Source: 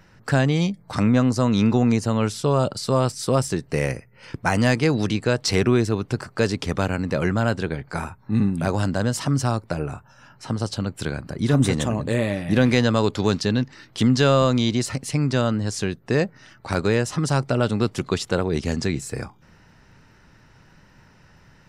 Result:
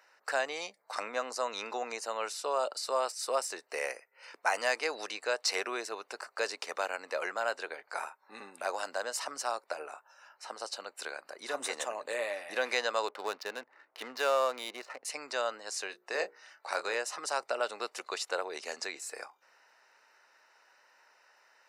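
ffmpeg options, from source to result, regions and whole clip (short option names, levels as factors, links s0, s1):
-filter_complex "[0:a]asettb=1/sr,asplit=3[s0][s1][s2];[s0]atrim=end=13.084[s3];[s1]atrim=start=13.08:end=15.05,asetpts=PTS-STARTPTS,afade=t=in:d=0.004:c=qsin,afade=t=out:st=1.966:d=0.004:c=qsin,lowpass=f=2900:p=1,adynamicsmooth=sensitivity=5.5:basefreq=1200[s4];[s2]atrim=start=15.046[s5];[s3][s4]acrossfade=d=0.004:c1=hsin:c2=qsin[s6];[s6][s5]acrossfade=d=0.004:c1=qsin:c2=hsin,asettb=1/sr,asplit=3[s7][s8][s9];[s7]atrim=end=15.874[s10];[s8]atrim=start=15.87:end=16.95,asetpts=PTS-STARTPTS,afade=t=in:d=0.004:c=qsin,afade=t=out:st=1.076:d=0.004:c=qsin,bandreject=f=60:t=h:w=6,bandreject=f=120:t=h:w=6,bandreject=f=180:t=h:w=6,bandreject=f=240:t=h:w=6,bandreject=f=300:t=h:w=6,bandreject=f=360:t=h:w=6,bandreject=f=420:t=h:w=6,bandreject=f=480:t=h:w=6,asplit=2[s11][s12];[s12]adelay=26,volume=0.335[s13];[s11][s13]amix=inputs=2:normalize=0,atrim=end_sample=47628[s14];[s9]atrim=start=16.946[s15];[s10][s14]acrossfade=d=0.004:c1=hsin:c2=qsin[s16];[s16][s15]acrossfade=d=0.004:c1=qsin:c2=hsin,highpass=f=550:w=0.5412,highpass=f=550:w=1.3066,bandreject=f=3300:w=6.8,volume=0.501"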